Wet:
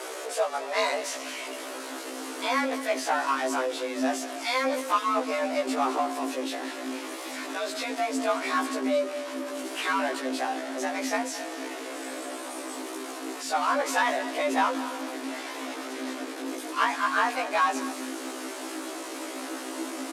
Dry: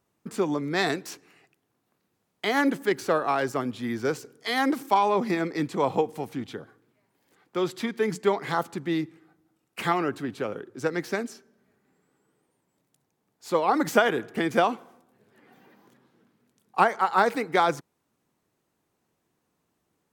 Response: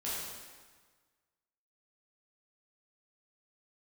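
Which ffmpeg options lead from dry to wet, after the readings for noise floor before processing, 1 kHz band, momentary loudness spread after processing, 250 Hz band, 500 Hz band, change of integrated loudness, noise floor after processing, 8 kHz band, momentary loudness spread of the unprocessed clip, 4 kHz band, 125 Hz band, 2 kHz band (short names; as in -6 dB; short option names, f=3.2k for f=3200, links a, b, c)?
-76 dBFS, -0.5 dB, 10 LU, -2.0 dB, -2.0 dB, -3.0 dB, -38 dBFS, +8.5 dB, 12 LU, +3.0 dB, under -25 dB, +1.0 dB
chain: -filter_complex "[0:a]aeval=exprs='val(0)+0.5*0.0398*sgn(val(0))':c=same,lowpass=f=11k:w=0.5412,lowpass=f=11k:w=1.3066,asubboost=boost=11:cutoff=53,asoftclip=type=tanh:threshold=-13dB,afreqshift=260,asplit=2[a][b];[b]aecho=0:1:217:0.178[c];[a][c]amix=inputs=2:normalize=0,afftfilt=real='re*1.73*eq(mod(b,3),0)':imag='im*1.73*eq(mod(b,3),0)':win_size=2048:overlap=0.75"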